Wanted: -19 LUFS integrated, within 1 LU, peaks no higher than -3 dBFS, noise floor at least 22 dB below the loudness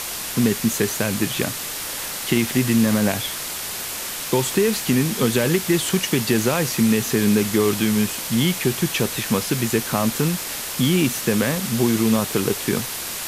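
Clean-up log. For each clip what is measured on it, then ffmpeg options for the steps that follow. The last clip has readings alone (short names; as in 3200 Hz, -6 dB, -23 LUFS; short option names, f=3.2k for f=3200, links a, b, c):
noise floor -30 dBFS; noise floor target -43 dBFS; loudness -20.5 LUFS; peak -5.5 dBFS; loudness target -19.0 LUFS
-> -af "afftdn=nr=13:nf=-30"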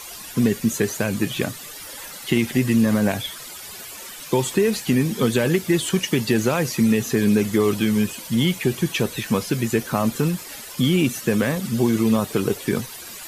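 noise floor -38 dBFS; noise floor target -44 dBFS
-> -af "afftdn=nr=6:nf=-38"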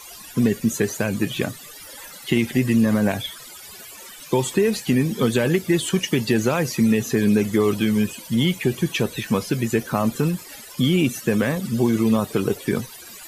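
noise floor -41 dBFS; noise floor target -44 dBFS
-> -af "afftdn=nr=6:nf=-41"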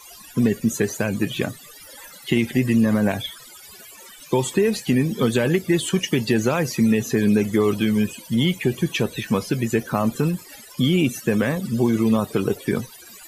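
noise floor -44 dBFS; loudness -21.5 LUFS; peak -6.5 dBFS; loudness target -19.0 LUFS
-> -af "volume=2.5dB"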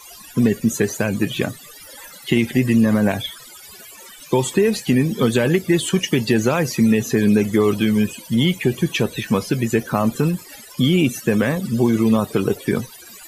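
loudness -19.0 LUFS; peak -4.0 dBFS; noise floor -42 dBFS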